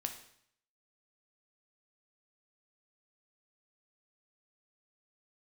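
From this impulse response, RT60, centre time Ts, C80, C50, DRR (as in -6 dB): 0.65 s, 14 ms, 12.5 dB, 9.5 dB, 5.0 dB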